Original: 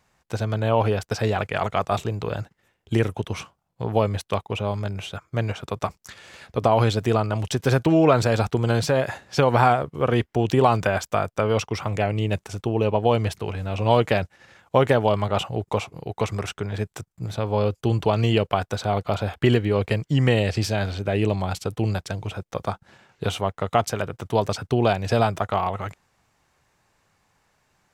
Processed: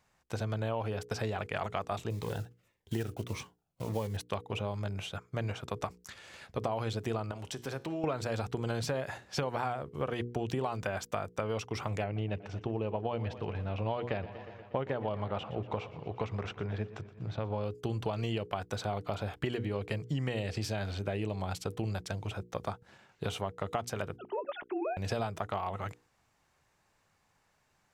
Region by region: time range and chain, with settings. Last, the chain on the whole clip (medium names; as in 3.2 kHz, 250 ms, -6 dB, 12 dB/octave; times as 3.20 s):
2.10–4.17 s: block-companded coder 5-bit + Shepard-style phaser falling 1.7 Hz
7.31–8.04 s: bass shelf 130 Hz -9.5 dB + compression 2:1, threshold -27 dBFS + feedback comb 68 Hz, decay 0.62 s, mix 40%
12.04–17.63 s: distance through air 200 m + modulated delay 120 ms, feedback 70%, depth 91 cents, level -18.5 dB
24.18–24.97 s: formants replaced by sine waves + compression, threshold -23 dBFS
whole clip: hum notches 60/120/180/240/300/360/420/480 Hz; compression, threshold -24 dBFS; trim -6 dB